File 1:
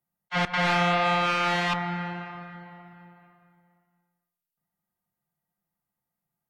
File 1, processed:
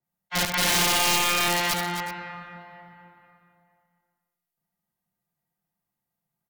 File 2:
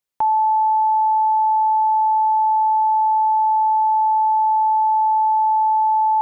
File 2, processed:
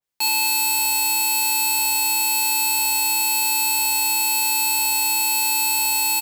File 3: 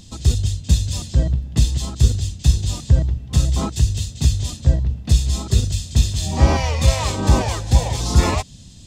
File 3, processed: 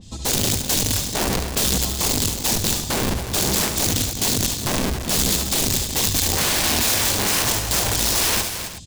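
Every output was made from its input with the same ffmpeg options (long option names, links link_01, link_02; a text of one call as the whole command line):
ffmpeg -i in.wav -af "aeval=exprs='(mod(7.5*val(0)+1,2)-1)/7.5':channel_layout=same,equalizer=frequency=1300:width=7.1:gain=-3.5,aecho=1:1:72|267|373:0.398|0.316|0.158,asoftclip=type=tanh:threshold=-14dB,adynamicequalizer=threshold=0.01:dfrequency=3000:dqfactor=0.7:tfrequency=3000:tqfactor=0.7:attack=5:release=100:ratio=0.375:range=2.5:mode=boostabove:tftype=highshelf" out.wav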